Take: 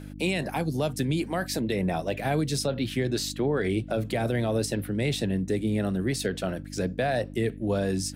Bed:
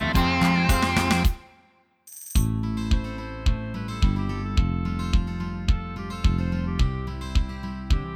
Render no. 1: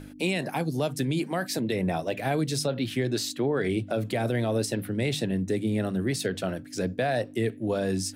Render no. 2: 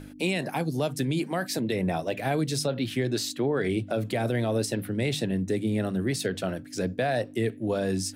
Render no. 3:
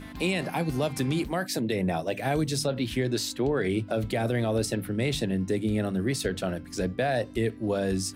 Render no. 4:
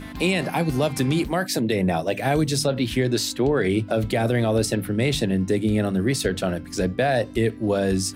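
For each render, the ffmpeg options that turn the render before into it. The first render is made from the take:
-af "bandreject=f=50:t=h:w=4,bandreject=f=100:t=h:w=4,bandreject=f=150:t=h:w=4,bandreject=f=200:t=h:w=4"
-af anull
-filter_complex "[1:a]volume=-22dB[a];[0:a][a]amix=inputs=2:normalize=0"
-af "volume=5.5dB"

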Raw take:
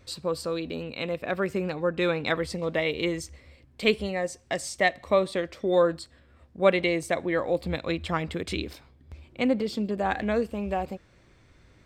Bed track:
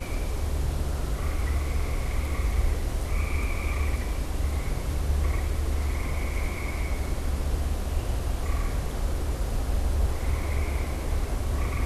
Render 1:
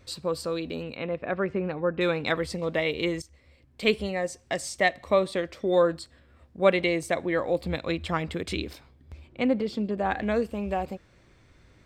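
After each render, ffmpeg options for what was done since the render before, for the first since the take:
-filter_complex "[0:a]asettb=1/sr,asplit=3[a][b][c];[a]atrim=end=0.964[d];[b]atrim=start=0.96:end=2.01,asetpts=PTS-STARTPTS,afade=t=in:d=0.004:c=qsin,afade=t=out:st=1.046:d=0.004:c=qsin,lowpass=2.2k[e];[c]atrim=start=2.006[f];[d][e]acrossfade=d=0.004:c1=hsin:c2=qsin[g];[g][f]acrossfade=d=0.004:c1=qsin:c2=hsin,asettb=1/sr,asplit=3[h][i][j];[h]atrim=end=9.274[k];[i]atrim=start=9.27:end=10.23,asetpts=PTS-STARTPTS,afade=t=in:d=0.004:c=qsin,afade=t=out:st=0.956:d=0.004:c=qsin,highshelf=f=5.9k:g=-11[l];[j]atrim=start=10.226[m];[k][l]acrossfade=d=0.004:c1=hsin:c2=qsin[n];[n][m]acrossfade=d=0.004:c1=qsin:c2=hsin,asplit=2[o][p];[o]atrim=end=3.22,asetpts=PTS-STARTPTS,afade=t=out:st=3.216:d=0.004:c=hsin:silence=0.223872[q];[p]atrim=start=3.22,asetpts=PTS-STARTPTS,afade=t=in:d=0.72:silence=0.223872[r];[q][r]concat=n=2:v=0:a=1"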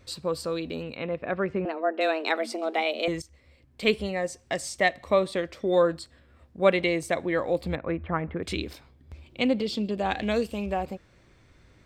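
-filter_complex "[0:a]asettb=1/sr,asplit=3[a][b][c];[a]atrim=end=1.654[d];[b]atrim=start=1.65:end=3.08,asetpts=PTS-STARTPTS,afade=t=in:d=0.004:c=qsin,afade=t=out:st=1.426:d=0.004:c=qsin,afreqshift=160[e];[c]atrim=start=3.076[f];[d][e]acrossfade=d=0.004:c1=hsin:c2=qsin[g];[g][f]acrossfade=d=0.004:c1=qsin:c2=hsin,asettb=1/sr,asplit=3[h][i][j];[h]atrim=end=7.754[k];[i]atrim=start=7.75:end=8.43,asetpts=PTS-STARTPTS,afade=t=in:d=0.004:c=qsin,afade=t=out:st=0.676:d=0.004:c=qsin,lowpass=f=1.9k:w=0.5412,lowpass=f=1.9k:w=1.3066[l];[j]atrim=start=8.426[m];[k][l]acrossfade=d=0.004:c1=hsin:c2=qsin[n];[n][m]acrossfade=d=0.004:c1=qsin:c2=hsin,asettb=1/sr,asplit=3[o][p][q];[o]atrim=end=9.264[r];[p]atrim=start=9.26:end=10.66,asetpts=PTS-STARTPTS,afade=t=in:d=0.004:c=qsin,afade=t=out:st=1.396:d=0.004:c=qsin,highshelf=f=2.3k:t=q:w=1.5:g=7[s];[q]atrim=start=10.656[t];[r][s]acrossfade=d=0.004:c1=hsin:c2=qsin[u];[u][t]acrossfade=d=0.004:c1=qsin:c2=hsin"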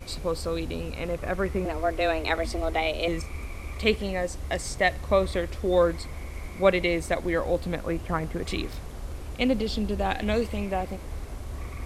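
-filter_complex "[1:a]volume=-8.5dB[a];[0:a][a]amix=inputs=2:normalize=0"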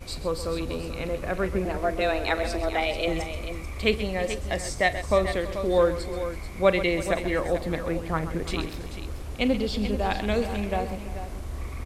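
-af "aecho=1:1:43|130|329|437:0.141|0.237|0.133|0.299"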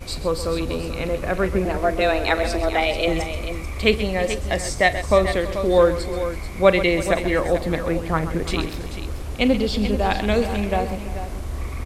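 -af "volume=5.5dB"

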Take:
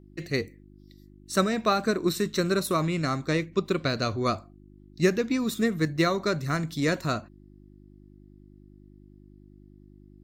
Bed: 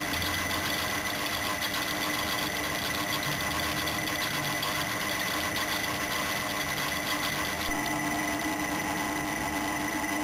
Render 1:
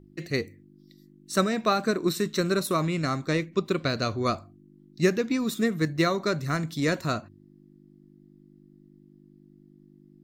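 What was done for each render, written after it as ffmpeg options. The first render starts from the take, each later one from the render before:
-af "bandreject=f=50:t=h:w=4,bandreject=f=100:t=h:w=4"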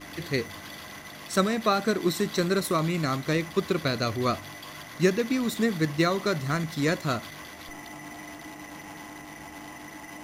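-filter_complex "[1:a]volume=-12dB[a];[0:a][a]amix=inputs=2:normalize=0"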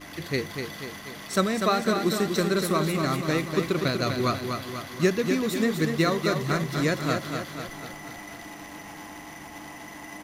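-af "aecho=1:1:245|490|735|980|1225|1470|1715:0.501|0.276|0.152|0.0834|0.0459|0.0252|0.0139"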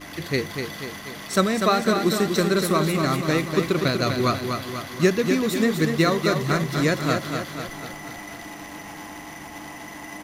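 -af "volume=3.5dB"

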